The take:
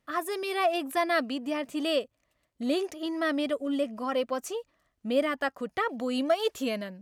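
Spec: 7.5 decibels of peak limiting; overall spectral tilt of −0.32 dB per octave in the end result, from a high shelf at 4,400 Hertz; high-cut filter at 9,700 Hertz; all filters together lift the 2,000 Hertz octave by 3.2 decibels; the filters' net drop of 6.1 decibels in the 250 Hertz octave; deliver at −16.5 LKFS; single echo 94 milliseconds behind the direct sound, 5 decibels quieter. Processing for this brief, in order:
low-pass filter 9,700 Hz
parametric band 250 Hz −7.5 dB
parametric band 2,000 Hz +5.5 dB
high-shelf EQ 4,400 Hz −9 dB
brickwall limiter −21 dBFS
single-tap delay 94 ms −5 dB
level +15 dB

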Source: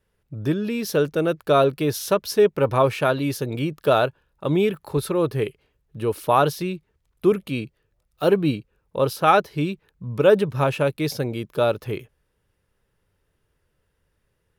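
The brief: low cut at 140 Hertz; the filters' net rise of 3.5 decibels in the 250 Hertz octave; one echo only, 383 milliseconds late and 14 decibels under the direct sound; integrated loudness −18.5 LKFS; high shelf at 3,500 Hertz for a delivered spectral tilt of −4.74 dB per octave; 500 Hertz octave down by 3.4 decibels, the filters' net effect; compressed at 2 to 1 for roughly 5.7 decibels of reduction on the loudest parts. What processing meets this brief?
high-pass filter 140 Hz
parametric band 250 Hz +8 dB
parametric band 500 Hz −7 dB
high-shelf EQ 3,500 Hz +9 dB
downward compressor 2 to 1, threshold −23 dBFS
single-tap delay 383 ms −14 dB
level +8 dB

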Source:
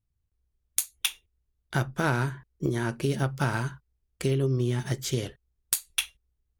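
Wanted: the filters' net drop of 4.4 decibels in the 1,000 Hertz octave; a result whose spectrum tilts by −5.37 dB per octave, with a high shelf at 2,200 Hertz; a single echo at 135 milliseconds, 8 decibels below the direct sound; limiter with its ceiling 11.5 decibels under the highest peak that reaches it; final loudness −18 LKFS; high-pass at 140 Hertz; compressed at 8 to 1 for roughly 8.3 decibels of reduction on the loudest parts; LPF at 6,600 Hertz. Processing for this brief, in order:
high-pass filter 140 Hz
low-pass filter 6,600 Hz
parametric band 1,000 Hz −5 dB
high-shelf EQ 2,200 Hz −4 dB
downward compressor 8 to 1, threshold −32 dBFS
brickwall limiter −25.5 dBFS
single-tap delay 135 ms −8 dB
level +22 dB

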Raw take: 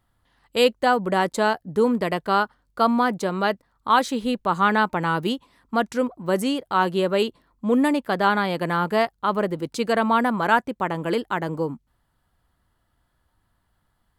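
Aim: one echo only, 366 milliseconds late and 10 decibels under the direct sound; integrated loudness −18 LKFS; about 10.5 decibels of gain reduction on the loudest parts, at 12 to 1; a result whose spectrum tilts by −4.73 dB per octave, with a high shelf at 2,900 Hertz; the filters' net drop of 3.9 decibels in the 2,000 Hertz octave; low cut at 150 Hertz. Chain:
high-pass filter 150 Hz
parametric band 2,000 Hz −3.5 dB
high-shelf EQ 2,900 Hz −6.5 dB
downward compressor 12 to 1, threshold −25 dBFS
single-tap delay 366 ms −10 dB
level +13 dB

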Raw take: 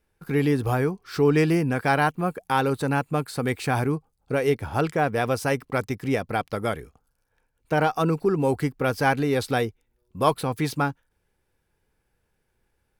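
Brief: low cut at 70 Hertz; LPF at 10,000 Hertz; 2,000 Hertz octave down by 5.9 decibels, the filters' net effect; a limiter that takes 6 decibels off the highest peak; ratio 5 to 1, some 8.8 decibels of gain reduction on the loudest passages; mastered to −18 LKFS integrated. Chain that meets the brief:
high-pass filter 70 Hz
low-pass filter 10,000 Hz
parametric band 2,000 Hz −8.5 dB
downward compressor 5 to 1, threshold −26 dBFS
level +14.5 dB
brickwall limiter −6 dBFS

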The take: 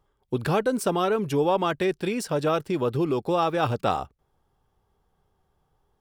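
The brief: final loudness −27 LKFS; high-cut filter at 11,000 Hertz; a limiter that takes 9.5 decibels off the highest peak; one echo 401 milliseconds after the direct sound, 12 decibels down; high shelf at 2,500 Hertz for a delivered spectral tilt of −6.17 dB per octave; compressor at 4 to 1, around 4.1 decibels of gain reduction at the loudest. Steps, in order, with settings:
low-pass filter 11,000 Hz
high-shelf EQ 2,500 Hz −5 dB
downward compressor 4 to 1, threshold −24 dBFS
brickwall limiter −23.5 dBFS
single-tap delay 401 ms −12 dB
level +5.5 dB

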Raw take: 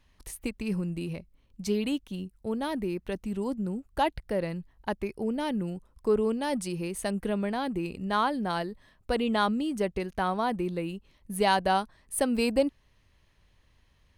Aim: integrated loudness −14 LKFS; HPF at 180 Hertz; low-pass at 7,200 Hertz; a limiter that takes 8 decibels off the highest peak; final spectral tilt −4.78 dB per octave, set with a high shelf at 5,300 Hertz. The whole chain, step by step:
high-pass filter 180 Hz
low-pass filter 7,200 Hz
high-shelf EQ 5,300 Hz −6.5 dB
level +18.5 dB
brickwall limiter −1.5 dBFS

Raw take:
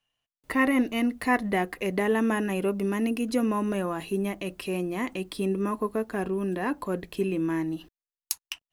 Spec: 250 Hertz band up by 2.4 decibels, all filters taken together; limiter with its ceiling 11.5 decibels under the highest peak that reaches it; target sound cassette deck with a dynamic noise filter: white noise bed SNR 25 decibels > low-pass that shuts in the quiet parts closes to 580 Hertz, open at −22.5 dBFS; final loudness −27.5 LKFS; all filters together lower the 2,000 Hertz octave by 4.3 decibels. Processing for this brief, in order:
parametric band 250 Hz +3 dB
parametric band 2,000 Hz −5 dB
brickwall limiter −19.5 dBFS
white noise bed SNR 25 dB
low-pass that shuts in the quiet parts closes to 580 Hz, open at −22.5 dBFS
level +1.5 dB

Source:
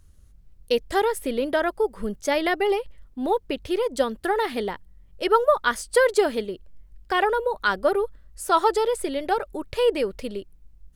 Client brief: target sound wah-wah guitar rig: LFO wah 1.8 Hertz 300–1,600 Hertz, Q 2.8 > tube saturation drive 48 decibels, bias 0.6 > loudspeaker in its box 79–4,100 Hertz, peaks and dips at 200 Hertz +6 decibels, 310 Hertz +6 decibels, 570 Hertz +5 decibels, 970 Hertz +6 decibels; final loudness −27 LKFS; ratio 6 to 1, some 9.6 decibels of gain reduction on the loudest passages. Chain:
downward compressor 6 to 1, threshold −24 dBFS
LFO wah 1.8 Hz 300–1,600 Hz, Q 2.8
tube saturation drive 48 dB, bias 0.6
loudspeaker in its box 79–4,100 Hz, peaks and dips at 200 Hz +6 dB, 310 Hz +6 dB, 570 Hz +5 dB, 970 Hz +6 dB
level +22 dB

